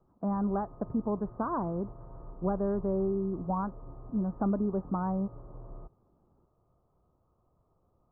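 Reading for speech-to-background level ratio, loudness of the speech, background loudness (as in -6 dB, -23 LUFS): 17.5 dB, -32.5 LUFS, -50.0 LUFS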